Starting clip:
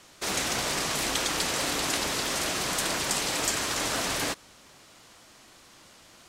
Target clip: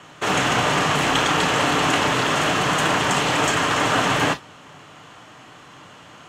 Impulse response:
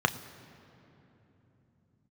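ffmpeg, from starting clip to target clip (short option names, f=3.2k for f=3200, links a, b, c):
-filter_complex "[0:a]highshelf=f=4.6k:g=-6[a];[1:a]atrim=start_sample=2205,atrim=end_sample=3087[b];[a][b]afir=irnorm=-1:irlink=0"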